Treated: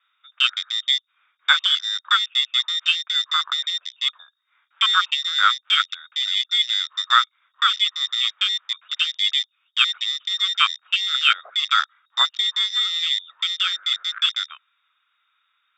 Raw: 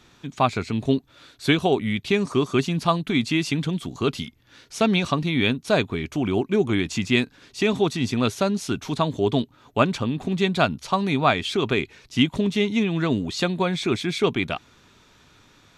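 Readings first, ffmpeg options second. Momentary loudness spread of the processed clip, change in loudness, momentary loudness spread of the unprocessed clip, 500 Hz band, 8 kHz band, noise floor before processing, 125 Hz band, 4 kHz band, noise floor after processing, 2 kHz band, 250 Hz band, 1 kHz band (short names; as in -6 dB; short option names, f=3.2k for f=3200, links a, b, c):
7 LU, +3.5 dB, 6 LU, under -30 dB, +1.0 dB, -56 dBFS, under -40 dB, +13.0 dB, -71 dBFS, +4.5 dB, under -40 dB, +2.0 dB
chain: -af "lowpass=f=3.2k:t=q:w=0.5098,lowpass=f=3.2k:t=q:w=0.6013,lowpass=f=3.2k:t=q:w=0.9,lowpass=f=3.2k:t=q:w=2.563,afreqshift=-3800,afwtdn=0.0562,highpass=f=1.3k:t=q:w=4.8,volume=-1dB"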